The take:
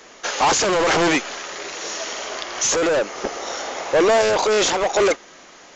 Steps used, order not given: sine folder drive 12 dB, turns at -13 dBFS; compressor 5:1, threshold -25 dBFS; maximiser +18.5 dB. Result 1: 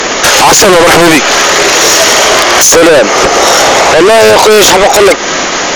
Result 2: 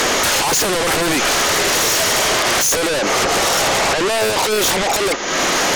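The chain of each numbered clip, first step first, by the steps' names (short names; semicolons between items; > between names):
compressor > sine folder > maximiser; maximiser > compressor > sine folder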